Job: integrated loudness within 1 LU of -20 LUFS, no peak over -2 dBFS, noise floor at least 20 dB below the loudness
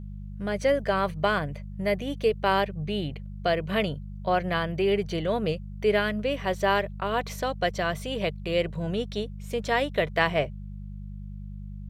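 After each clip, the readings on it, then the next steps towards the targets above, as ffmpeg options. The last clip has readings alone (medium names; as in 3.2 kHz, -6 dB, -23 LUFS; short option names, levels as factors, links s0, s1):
hum 50 Hz; highest harmonic 200 Hz; hum level -35 dBFS; loudness -27.5 LUFS; peak level -8.0 dBFS; loudness target -20.0 LUFS
-> -af "bandreject=f=50:t=h:w=4,bandreject=f=100:t=h:w=4,bandreject=f=150:t=h:w=4,bandreject=f=200:t=h:w=4"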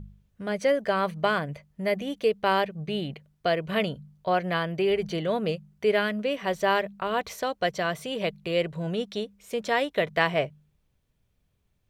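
hum not found; loudness -27.5 LUFS; peak level -8.0 dBFS; loudness target -20.0 LUFS
-> -af "volume=2.37,alimiter=limit=0.794:level=0:latency=1"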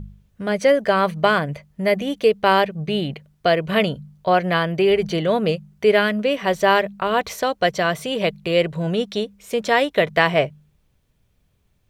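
loudness -20.0 LUFS; peak level -2.0 dBFS; noise floor -64 dBFS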